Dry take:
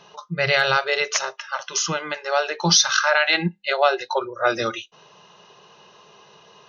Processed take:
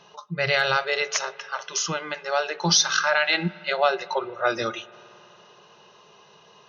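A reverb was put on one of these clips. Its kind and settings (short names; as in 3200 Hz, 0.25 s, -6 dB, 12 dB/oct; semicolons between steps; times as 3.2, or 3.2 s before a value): spring tank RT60 3.4 s, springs 55 ms, chirp 80 ms, DRR 19.5 dB; gain -3 dB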